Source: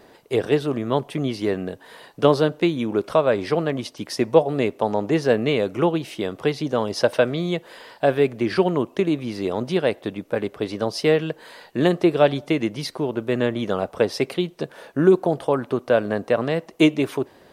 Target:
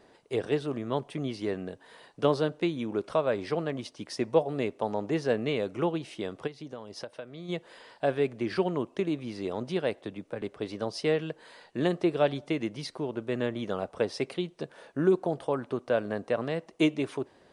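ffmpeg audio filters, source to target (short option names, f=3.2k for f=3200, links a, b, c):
-filter_complex "[0:a]asettb=1/sr,asplit=3[a][b][c];[a]atrim=end=9.974[d];[b]atrim=start=9.97:end=10.42,asetpts=PTS-STARTPTS,afade=t=in:d=0.004:c=qsin,afade=t=out:st=0.446:d=0.004:c=qsin,acrossover=split=160[e][f];[f]acompressor=threshold=-24dB:ratio=5[g];[e][g]amix=inputs=2:normalize=0[h];[c]atrim=start=10.416[i];[d][h]acrossfade=d=0.004:c1=hsin:c2=qsin[j];[j][i]acrossfade=d=0.004:c1=qsin:c2=hsin,aresample=22050,aresample=44100,asplit=3[k][l][m];[k]afade=t=out:st=6.46:d=0.02[n];[l]acompressor=threshold=-29dB:ratio=8,afade=t=in:st=6.46:d=0.02,afade=t=out:st=7.48:d=0.02[o];[m]afade=t=in:st=7.48:d=0.02[p];[n][o][p]amix=inputs=3:normalize=0,volume=-8.5dB"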